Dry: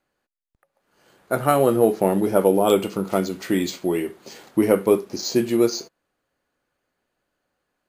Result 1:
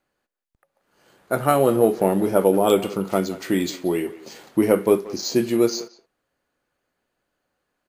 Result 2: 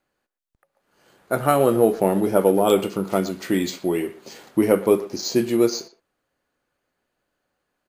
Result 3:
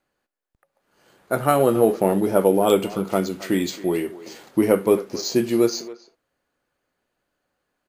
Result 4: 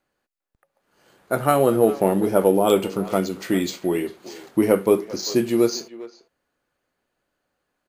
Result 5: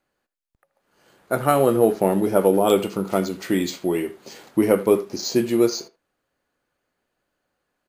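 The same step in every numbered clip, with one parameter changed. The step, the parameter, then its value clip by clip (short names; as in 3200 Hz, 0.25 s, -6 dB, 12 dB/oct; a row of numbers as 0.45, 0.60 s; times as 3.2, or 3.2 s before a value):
speakerphone echo, time: 180, 120, 270, 400, 80 ms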